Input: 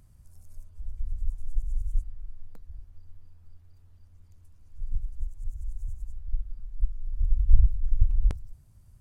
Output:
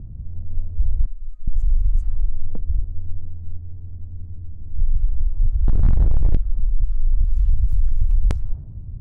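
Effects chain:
low-pass that shuts in the quiet parts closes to 300 Hz, open at −15 dBFS
0:05.68–0:06.37: leveller curve on the samples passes 5
0:07.24–0:07.73: bass and treble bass −6 dB, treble −1 dB
downward compressor 2.5 to 1, threshold −31 dBFS, peak gain reduction 12.5 dB
0:01.06–0:01.48: tuned comb filter 310 Hz, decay 0.37 s, harmonics all, mix 100%
boost into a limiter +30.5 dB
level −8.5 dB

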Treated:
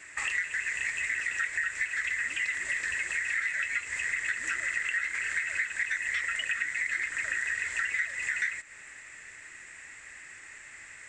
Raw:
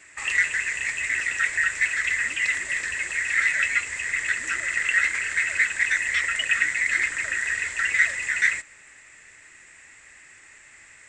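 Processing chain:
downward compressor 6 to 1, threshold −31 dBFS, peak gain reduction 16 dB
parametric band 1,700 Hz +3.5 dB 0.84 octaves

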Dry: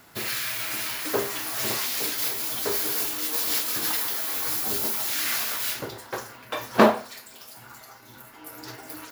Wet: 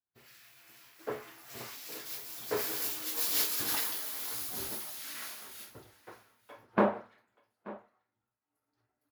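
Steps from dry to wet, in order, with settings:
source passing by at 0:03.37, 22 m/s, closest 24 metres
on a send: single-tap delay 881 ms −11.5 dB
on the sum: multiband upward and downward expander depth 100%
level −8.5 dB

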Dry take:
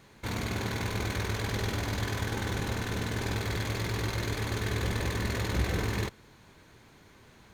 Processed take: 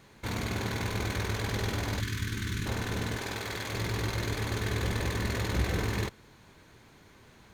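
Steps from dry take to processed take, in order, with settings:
0:02.00–0:02.66: Butterworth band-reject 660 Hz, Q 0.6
0:03.16–0:03.73: low-shelf EQ 230 Hz −11.5 dB

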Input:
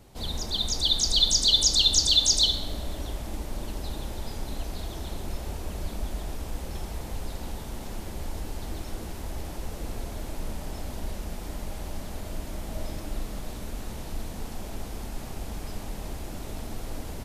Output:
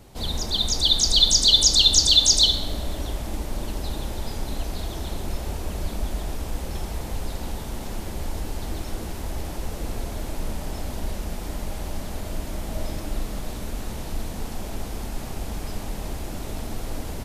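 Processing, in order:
level +4.5 dB

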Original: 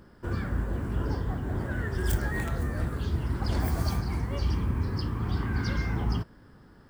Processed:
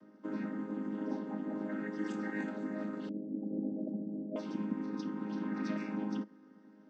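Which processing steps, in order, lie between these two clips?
channel vocoder with a chord as carrier major triad, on G#3
0:03.09–0:04.36: elliptic low-pass filter 660 Hz, stop band 40 dB
level −4 dB

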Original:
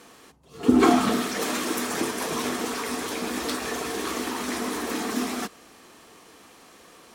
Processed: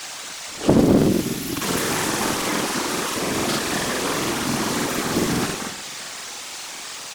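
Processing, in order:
0:00.81–0:01.57: linear-phase brick-wall band-stop 320–10,000 Hz
repeating echo 356 ms, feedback 41%, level −23.5 dB
reverb whose tail is shaped and stops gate 310 ms flat, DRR 1.5 dB
noise in a band 580–8,000 Hz −37 dBFS
leveller curve on the samples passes 2
high-shelf EQ 9,800 Hz +3.5 dB
comb filter 7.3 ms, depth 45%
random phases in short frames
0:02.46–0:03.14: low-shelf EQ 120 Hz −11 dB
regular buffer underruns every 0.14 s, samples 2,048, repeat, from 0:00.97
highs frequency-modulated by the lows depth 0.79 ms
level −5 dB

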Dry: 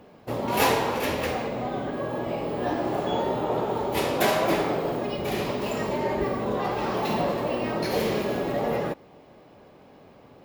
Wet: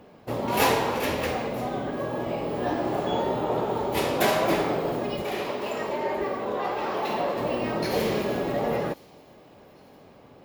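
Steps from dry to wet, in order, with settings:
0:05.22–0:07.37: bass and treble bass −12 dB, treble −5 dB
delay with a high-pass on its return 967 ms, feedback 32%, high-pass 3,700 Hz, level −20 dB

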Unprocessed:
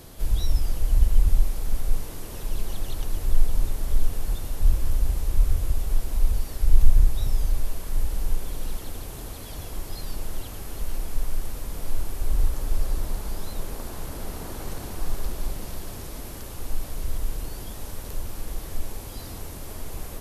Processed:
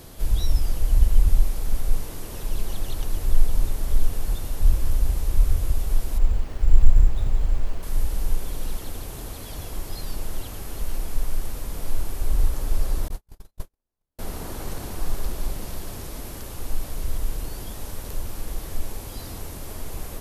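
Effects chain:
0:06.18–0:07.83: bad sample-rate conversion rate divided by 6×, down filtered, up hold
0:13.08–0:14.19: noise gate −22 dBFS, range −55 dB
level +1.5 dB

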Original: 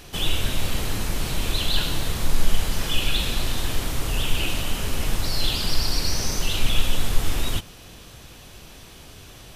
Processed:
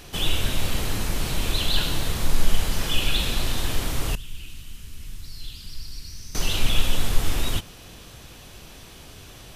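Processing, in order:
0:04.15–0:06.35: guitar amp tone stack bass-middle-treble 6-0-2

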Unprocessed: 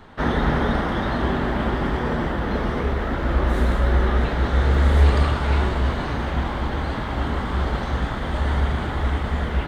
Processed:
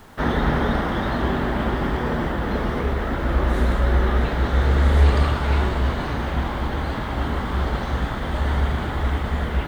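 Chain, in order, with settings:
bit reduction 9 bits

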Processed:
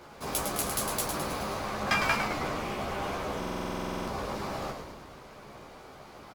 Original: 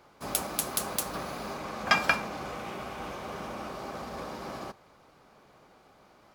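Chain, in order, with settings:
power curve on the samples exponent 0.7
multi-voice chorus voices 2, 0.81 Hz, delay 14 ms, depth 1.1 ms
on a send: echo with shifted repeats 106 ms, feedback 58%, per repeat −110 Hz, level −6 dB
on the sum: buffer that repeats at 0:03.38, samples 2,048, times 14
level −2.5 dB

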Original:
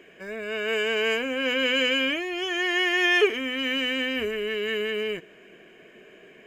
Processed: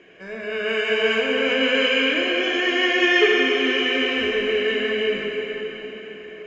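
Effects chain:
Butterworth low-pass 6,500 Hz 36 dB per octave
dense smooth reverb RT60 4.8 s, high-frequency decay 0.8×, DRR −3.5 dB

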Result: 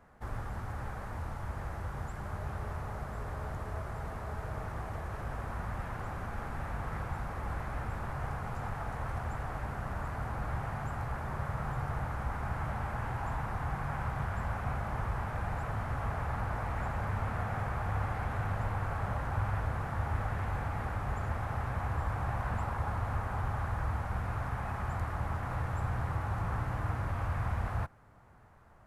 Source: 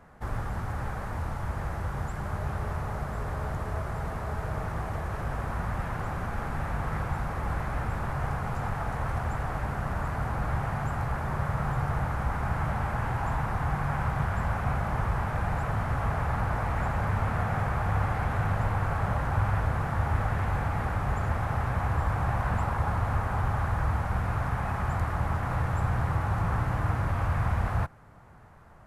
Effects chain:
parametric band 160 Hz −4.5 dB 0.28 octaves
level −6 dB

